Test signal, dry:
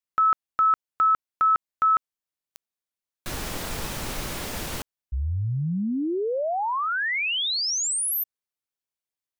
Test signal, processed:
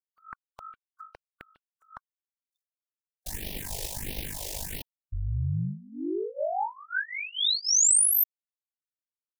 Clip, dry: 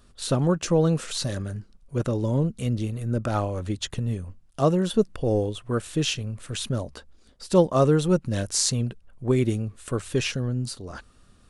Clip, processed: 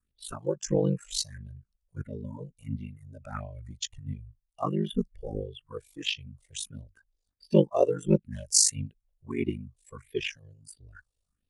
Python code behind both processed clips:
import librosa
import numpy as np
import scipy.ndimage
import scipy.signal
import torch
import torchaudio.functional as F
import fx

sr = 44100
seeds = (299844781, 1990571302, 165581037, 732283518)

y = fx.noise_reduce_blind(x, sr, reduce_db=18)
y = fx.high_shelf(y, sr, hz=3400.0, db=6.0)
y = y * np.sin(2.0 * np.pi * 25.0 * np.arange(len(y)) / sr)
y = fx.phaser_stages(y, sr, stages=4, low_hz=210.0, high_hz=1400.0, hz=1.5, feedback_pct=15)
y = fx.upward_expand(y, sr, threshold_db=-37.0, expansion=1.5)
y = y * librosa.db_to_amplitude(4.0)